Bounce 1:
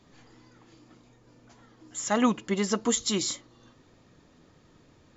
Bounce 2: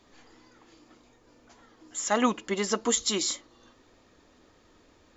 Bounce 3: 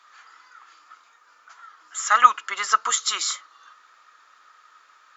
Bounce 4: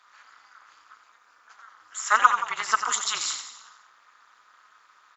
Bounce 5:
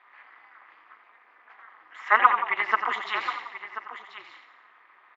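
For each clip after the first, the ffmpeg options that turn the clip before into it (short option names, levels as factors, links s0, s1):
-af "equalizer=f=140:t=o:w=0.98:g=-14.5,volume=1.19"
-af "highpass=f=1300:t=q:w=6.2,volume=1.41"
-filter_complex "[0:a]asplit=7[s0][s1][s2][s3][s4][s5][s6];[s1]adelay=88,afreqshift=-32,volume=0.422[s7];[s2]adelay=176,afreqshift=-64,volume=0.216[s8];[s3]adelay=264,afreqshift=-96,volume=0.11[s9];[s4]adelay=352,afreqshift=-128,volume=0.0562[s10];[s5]adelay=440,afreqshift=-160,volume=0.0285[s11];[s6]adelay=528,afreqshift=-192,volume=0.0146[s12];[s0][s7][s8][s9][s10][s11][s12]amix=inputs=7:normalize=0,tremolo=f=220:d=0.947"
-af "highpass=f=120:w=0.5412,highpass=f=120:w=1.3066,equalizer=f=160:t=q:w=4:g=-8,equalizer=f=370:t=q:w=4:g=6,equalizer=f=750:t=q:w=4:g=4,equalizer=f=1400:t=q:w=4:g=-9,equalizer=f=2000:t=q:w=4:g=7,lowpass=f=2600:w=0.5412,lowpass=f=2600:w=1.3066,aecho=1:1:1035:0.224,volume=1.41"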